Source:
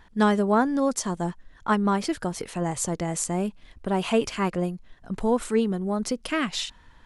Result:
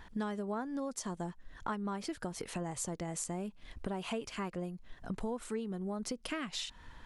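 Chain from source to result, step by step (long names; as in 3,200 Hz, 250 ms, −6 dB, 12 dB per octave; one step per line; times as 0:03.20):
downward compressor 6 to 1, threshold −37 dBFS, peak gain reduction 19 dB
level +1 dB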